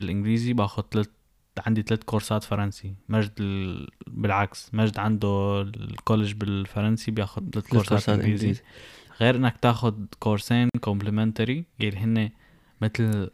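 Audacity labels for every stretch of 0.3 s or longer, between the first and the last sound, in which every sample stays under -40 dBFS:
1.060000	1.570000	silence
12.300000	12.810000	silence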